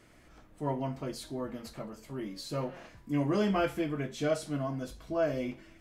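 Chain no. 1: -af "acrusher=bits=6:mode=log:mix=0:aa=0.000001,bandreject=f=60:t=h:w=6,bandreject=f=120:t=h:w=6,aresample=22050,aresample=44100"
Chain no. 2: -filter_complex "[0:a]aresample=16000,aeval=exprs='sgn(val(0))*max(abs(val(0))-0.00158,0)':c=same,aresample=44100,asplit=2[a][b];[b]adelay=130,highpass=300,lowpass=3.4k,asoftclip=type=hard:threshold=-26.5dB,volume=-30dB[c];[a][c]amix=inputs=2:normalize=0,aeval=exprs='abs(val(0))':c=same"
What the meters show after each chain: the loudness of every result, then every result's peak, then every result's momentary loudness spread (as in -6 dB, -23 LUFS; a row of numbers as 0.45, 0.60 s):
-34.0, -38.5 LUFS; -17.5, -18.0 dBFS; 12, 12 LU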